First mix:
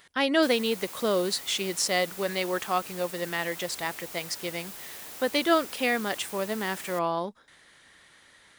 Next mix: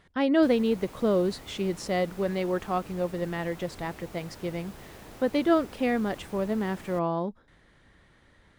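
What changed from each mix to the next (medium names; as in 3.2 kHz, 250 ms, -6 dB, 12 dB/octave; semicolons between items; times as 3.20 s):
speech -3.0 dB; master: add tilt EQ -4 dB/octave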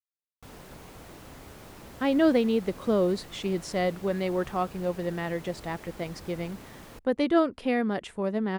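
speech: entry +1.85 s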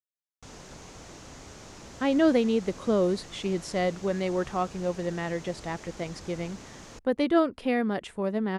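background: add resonant low-pass 6.5 kHz, resonance Q 3.1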